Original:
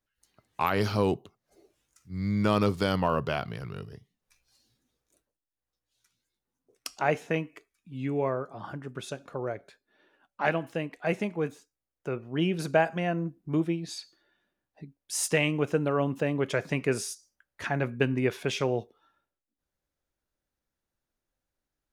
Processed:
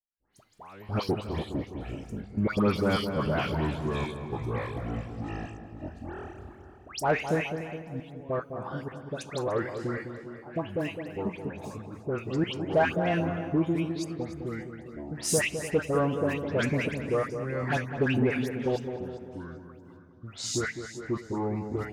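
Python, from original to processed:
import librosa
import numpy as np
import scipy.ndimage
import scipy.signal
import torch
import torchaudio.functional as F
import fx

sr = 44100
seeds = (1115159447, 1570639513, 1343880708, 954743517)

p1 = fx.step_gate(x, sr, bpm=152, pattern='..xxxx...x.xxxx', floor_db=-24.0, edge_ms=4.5)
p2 = p1 + fx.echo_feedback(p1, sr, ms=294, feedback_pct=27, wet_db=-15.0, dry=0)
p3 = fx.echo_pitch(p2, sr, ms=92, semitones=-5, count=2, db_per_echo=-6.0)
p4 = fx.dispersion(p3, sr, late='highs', ms=138.0, hz=2000.0)
p5 = 10.0 ** (-27.0 / 20.0) * np.tanh(p4 / 10.0 ** (-27.0 / 20.0))
p6 = p4 + (p5 * librosa.db_to_amplitude(-5.0))
p7 = fx.echo_filtered(p6, sr, ms=207, feedback_pct=61, hz=1400.0, wet_db=-8)
y = p7 * librosa.db_to_amplitude(-1.5)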